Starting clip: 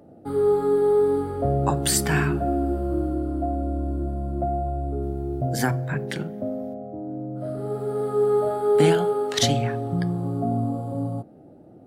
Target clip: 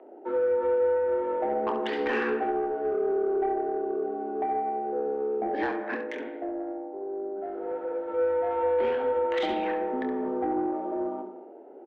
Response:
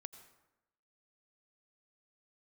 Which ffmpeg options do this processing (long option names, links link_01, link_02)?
-filter_complex "[0:a]acontrast=38,highpass=frequency=210:width_type=q:width=0.5412,highpass=frequency=210:width_type=q:width=1.307,lowpass=frequency=2800:width_type=q:width=0.5176,lowpass=frequency=2800:width_type=q:width=0.7071,lowpass=frequency=2800:width_type=q:width=1.932,afreqshift=82,acompressor=threshold=-19dB:ratio=6[link_01];[1:a]atrim=start_sample=2205,afade=type=out:start_time=0.36:duration=0.01,atrim=end_sample=16317,asetrate=41895,aresample=44100[link_02];[link_01][link_02]afir=irnorm=-1:irlink=0,asoftclip=type=tanh:threshold=-21dB,asplit=3[link_03][link_04][link_05];[link_03]afade=type=out:start_time=5.94:duration=0.02[link_06];[link_04]flanger=delay=4.6:depth=4.4:regen=-90:speed=1.4:shape=triangular,afade=type=in:start_time=5.94:duration=0.02,afade=type=out:start_time=8.17:duration=0.02[link_07];[link_05]afade=type=in:start_time=8.17:duration=0.02[link_08];[link_06][link_07][link_08]amix=inputs=3:normalize=0,aecho=1:1:26|69:0.355|0.376,volume=1dB"